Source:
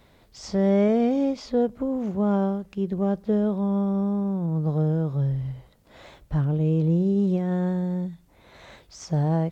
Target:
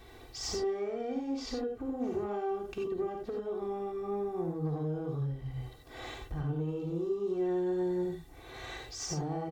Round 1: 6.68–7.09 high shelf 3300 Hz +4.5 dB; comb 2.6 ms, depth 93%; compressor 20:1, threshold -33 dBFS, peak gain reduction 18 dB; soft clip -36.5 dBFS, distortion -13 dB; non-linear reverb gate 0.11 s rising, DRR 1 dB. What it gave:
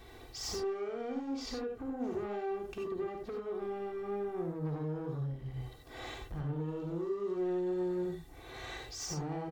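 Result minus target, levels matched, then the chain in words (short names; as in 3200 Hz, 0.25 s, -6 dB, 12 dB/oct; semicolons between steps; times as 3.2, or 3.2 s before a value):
soft clip: distortion +9 dB
6.68–7.09 high shelf 3300 Hz +4.5 dB; comb 2.6 ms, depth 93%; compressor 20:1, threshold -33 dBFS, peak gain reduction 18 dB; soft clip -29.5 dBFS, distortion -21 dB; non-linear reverb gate 0.11 s rising, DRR 1 dB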